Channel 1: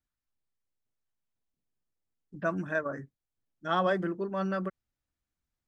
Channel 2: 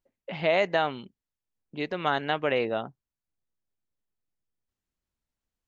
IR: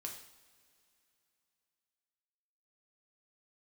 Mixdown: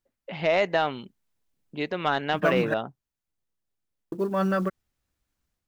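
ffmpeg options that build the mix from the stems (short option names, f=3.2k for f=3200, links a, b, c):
-filter_complex "[0:a]acrusher=bits=8:mode=log:mix=0:aa=0.000001,volume=1.5dB,asplit=3[a][b][c];[a]atrim=end=2.74,asetpts=PTS-STARTPTS,afade=t=out:st=2.736:d=0.004:c=hsin[d];[b]atrim=start=2.74:end=4.12,asetpts=PTS-STARTPTS,volume=0[e];[c]atrim=start=4.12,asetpts=PTS-STARTPTS,afade=t=in:d=0.004:c=hsin[f];[d][e][f]concat=n=3:v=0:a=1[g];[1:a]volume=-3.5dB[h];[g][h]amix=inputs=2:normalize=0,dynaudnorm=f=220:g=3:m=5.5dB,asoftclip=type=tanh:threshold=-11dB"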